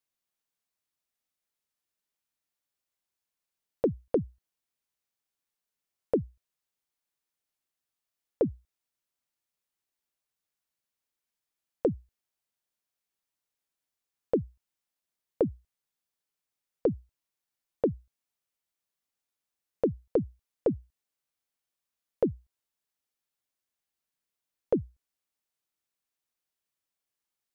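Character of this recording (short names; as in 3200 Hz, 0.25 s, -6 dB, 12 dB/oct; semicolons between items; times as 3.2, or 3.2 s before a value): noise floor -89 dBFS; spectral tilt -5.5 dB/oct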